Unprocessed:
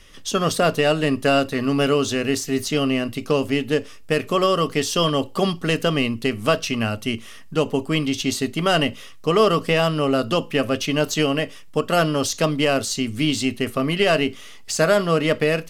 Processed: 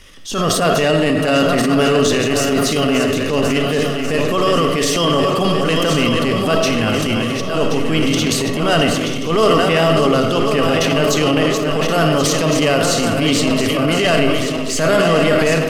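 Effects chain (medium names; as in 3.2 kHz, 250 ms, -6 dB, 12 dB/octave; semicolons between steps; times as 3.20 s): backward echo that repeats 540 ms, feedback 73%, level -7.5 dB; in parallel at +2.5 dB: peak limiter -11.5 dBFS, peak gain reduction 7 dB; on the sum: algorithmic reverb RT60 1.3 s, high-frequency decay 0.45×, pre-delay 15 ms, DRR 6.5 dB; transient shaper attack -9 dB, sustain +6 dB; trim -2.5 dB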